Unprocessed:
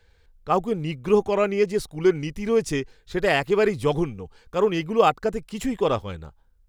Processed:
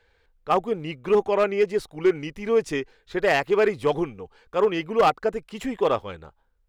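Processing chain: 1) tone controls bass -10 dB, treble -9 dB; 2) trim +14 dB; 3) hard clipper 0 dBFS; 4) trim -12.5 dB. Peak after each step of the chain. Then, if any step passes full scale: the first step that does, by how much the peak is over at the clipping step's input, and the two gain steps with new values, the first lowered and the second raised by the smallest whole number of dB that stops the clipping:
-5.5 dBFS, +8.5 dBFS, 0.0 dBFS, -12.5 dBFS; step 2, 8.5 dB; step 2 +5 dB, step 4 -3.5 dB

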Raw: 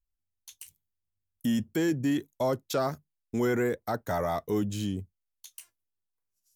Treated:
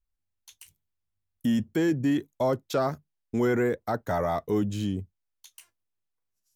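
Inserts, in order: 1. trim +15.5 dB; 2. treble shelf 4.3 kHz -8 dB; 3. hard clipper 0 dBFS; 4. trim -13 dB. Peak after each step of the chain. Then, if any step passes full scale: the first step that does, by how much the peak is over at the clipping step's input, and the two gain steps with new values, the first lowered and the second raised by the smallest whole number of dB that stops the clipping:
-2.0 dBFS, -2.5 dBFS, -2.5 dBFS, -15.5 dBFS; nothing clips

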